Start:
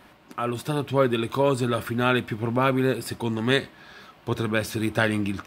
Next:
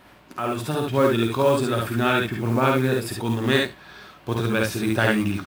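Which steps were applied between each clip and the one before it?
on a send: early reflections 52 ms -5.5 dB, 70 ms -3 dB; on the sum: modulation noise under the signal 26 dB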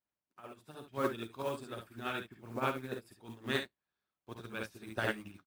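harmonic-percussive split harmonic -8 dB; upward expansion 2.5:1, over -45 dBFS; trim -6.5 dB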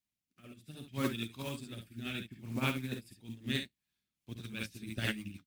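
high-order bell 750 Hz -13 dB 2.5 oct; rotary cabinet horn 0.65 Hz, later 6.7 Hz, at 3.67 s; trim +7.5 dB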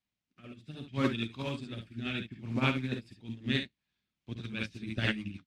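low-pass 4.2 kHz 12 dB/octave; trim +4.5 dB

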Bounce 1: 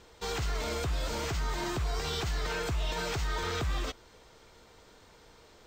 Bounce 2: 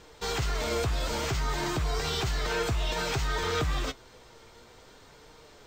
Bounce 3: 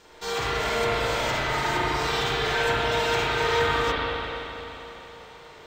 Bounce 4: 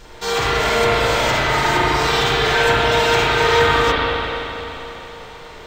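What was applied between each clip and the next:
flange 0.56 Hz, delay 6.4 ms, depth 2.5 ms, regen +65%; trim +8 dB
bass shelf 240 Hz -11.5 dB; spring tank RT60 3.4 s, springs 36/47 ms, chirp 50 ms, DRR -8.5 dB
added noise brown -53 dBFS; trim +8.5 dB

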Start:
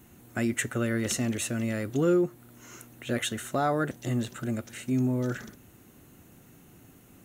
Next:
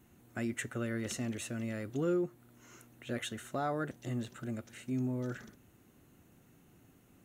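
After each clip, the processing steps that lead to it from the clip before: treble shelf 6.7 kHz -5 dB; trim -8 dB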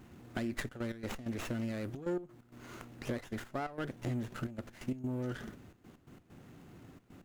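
compression 6:1, threshold -41 dBFS, peak gain reduction 12 dB; trance gate "xxxxxx.x.x." 131 bpm -12 dB; sliding maximum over 9 samples; trim +8.5 dB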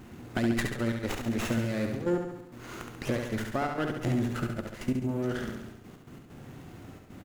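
feedback delay 69 ms, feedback 58%, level -5 dB; trim +7 dB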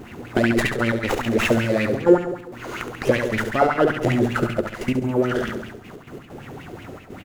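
sweeping bell 5.2 Hz 390–2800 Hz +15 dB; trim +6 dB

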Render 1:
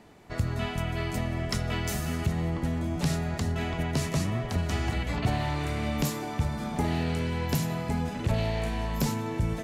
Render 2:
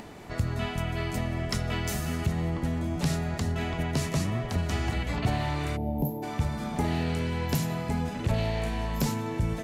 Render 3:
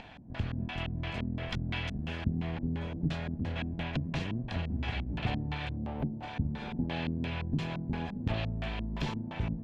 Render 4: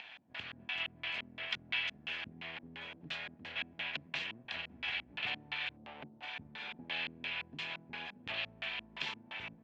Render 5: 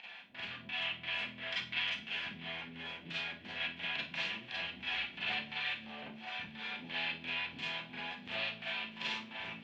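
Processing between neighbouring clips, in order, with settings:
time-frequency box 5.76–6.23 s, 970–11000 Hz -28 dB; upward compressor, threshold -35 dBFS
comb filter that takes the minimum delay 1.2 ms; LFO low-pass square 2.9 Hz 260–3100 Hz; trim -5 dB
band-pass filter 2.7 kHz, Q 1.4; trim +5 dB
thinning echo 666 ms, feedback 69%, level -17.5 dB; Schroeder reverb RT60 0.34 s, combs from 32 ms, DRR -7.5 dB; trim -6 dB

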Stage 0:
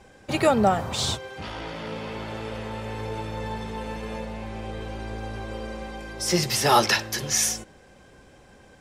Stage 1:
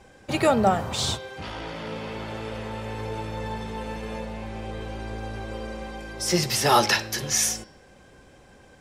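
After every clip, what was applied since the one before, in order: de-hum 208.5 Hz, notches 27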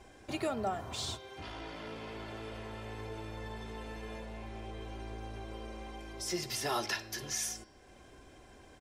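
comb 2.9 ms, depth 45%; compression 1.5:1, threshold -47 dBFS, peak gain reduction 11.5 dB; trim -4 dB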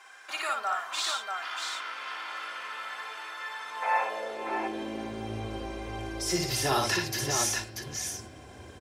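time-frequency box 3.82–4.04 s, 460–2700 Hz +12 dB; high-pass sweep 1.3 kHz -> 88 Hz, 3.61–5.53 s; multi-tap echo 58/637 ms -3.5/-4.5 dB; trim +5.5 dB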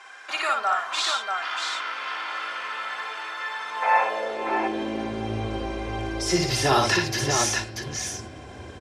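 distance through air 53 m; trim +7 dB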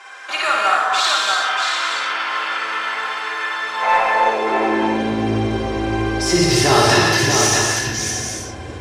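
in parallel at -4.5 dB: saturation -20 dBFS, distortion -12 dB; on the sum: gated-style reverb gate 360 ms flat, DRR -1.5 dB; trim +1.5 dB

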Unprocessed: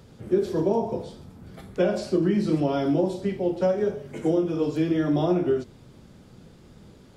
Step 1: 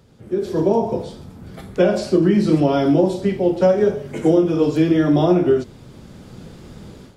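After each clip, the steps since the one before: level rider gain up to 13.5 dB; trim -2.5 dB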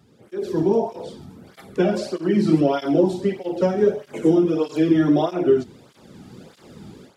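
cancelling through-zero flanger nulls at 1.6 Hz, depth 2.1 ms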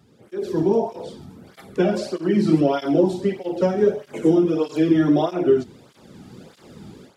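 no audible change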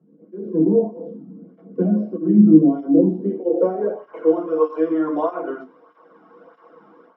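small resonant body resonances 300/490/700/1100 Hz, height 14 dB, ringing for 35 ms; band-pass sweep 210 Hz -> 1.1 kHz, 3.10–4.13 s; reverberation RT60 0.15 s, pre-delay 3 ms, DRR 4.5 dB; trim -10 dB

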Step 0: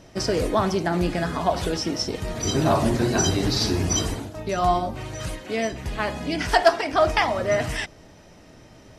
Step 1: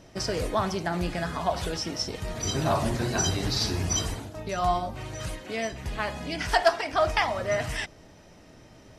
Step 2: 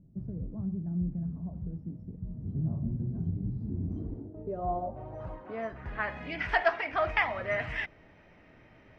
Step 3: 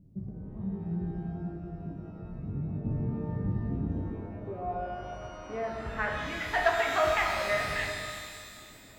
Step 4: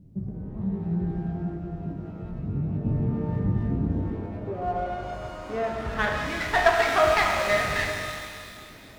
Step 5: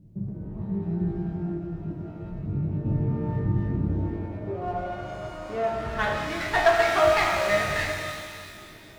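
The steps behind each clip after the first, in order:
dynamic bell 310 Hz, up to -6 dB, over -36 dBFS, Q 0.97; trim -3 dB
low-pass sweep 180 Hz -> 2.2 kHz, 3.54–6.25 s; trim -6.5 dB
random-step tremolo; pitch-shifted reverb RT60 2.2 s, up +12 st, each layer -8 dB, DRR 0.5 dB
sliding maximum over 5 samples; trim +6 dB
reverberation, pre-delay 3 ms, DRR 4 dB; trim -2 dB

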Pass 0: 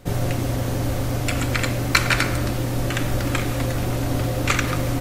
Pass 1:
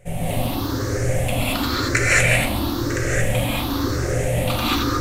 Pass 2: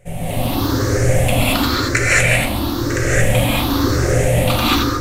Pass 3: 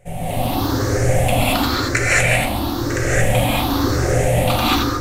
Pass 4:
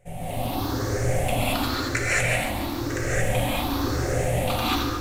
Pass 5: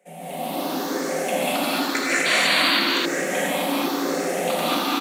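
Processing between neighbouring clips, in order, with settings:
drifting ripple filter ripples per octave 0.51, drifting +0.97 Hz, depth 17 dB; flange 1.7 Hz, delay 1.6 ms, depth 7.9 ms, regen -58%; gated-style reverb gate 250 ms rising, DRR -7 dB; trim -4 dB
level rider gain up to 8 dB
peaking EQ 770 Hz +6.5 dB 0.44 oct; trim -2 dB
bit-crushed delay 145 ms, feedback 55%, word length 6-bit, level -11.5 dB; trim -7.5 dB
painted sound noise, 2.25–2.80 s, 940–4700 Hz -23 dBFS; steep high-pass 170 Hz 96 dB/octave; on a send: loudspeakers at several distances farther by 66 m -4 dB, 89 m -2 dB

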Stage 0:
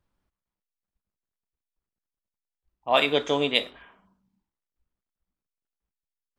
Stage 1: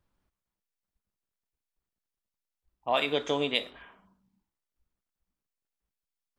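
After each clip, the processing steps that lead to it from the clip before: compression 2:1, threshold -27 dBFS, peak gain reduction 7 dB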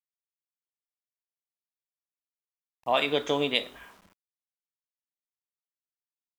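word length cut 10-bit, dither none; trim +2 dB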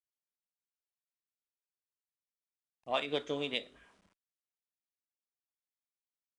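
rotary cabinet horn 6 Hz, later 0.7 Hz, at 2.84 s; Chebyshev shaper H 7 -34 dB, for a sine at -11 dBFS; resampled via 22.05 kHz; trim -6.5 dB

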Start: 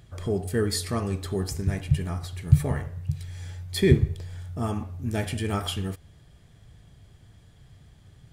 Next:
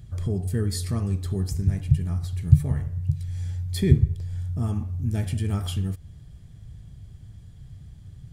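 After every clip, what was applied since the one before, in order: tone controls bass +14 dB, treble +5 dB; in parallel at +2 dB: compression, threshold -23 dBFS, peak gain reduction 24.5 dB; on the sum: trim -11.5 dB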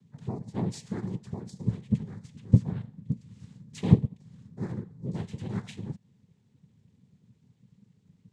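noise-vocoded speech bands 6; upward expansion 1.5:1, over -39 dBFS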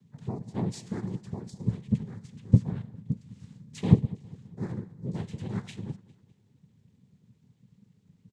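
feedback delay 202 ms, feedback 46%, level -21 dB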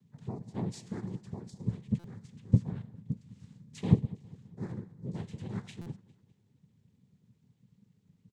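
buffer glitch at 1.99/5.81 s, samples 256, times 8; trim -4.5 dB

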